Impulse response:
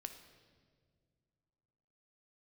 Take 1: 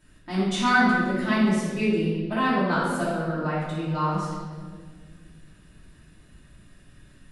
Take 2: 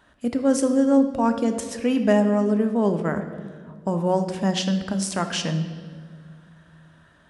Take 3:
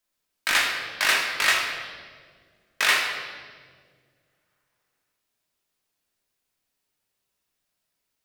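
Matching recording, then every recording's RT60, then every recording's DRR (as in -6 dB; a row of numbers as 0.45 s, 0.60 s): 2; 1.8 s, no single decay rate, 1.8 s; -9.5 dB, 6.5 dB, -1.0 dB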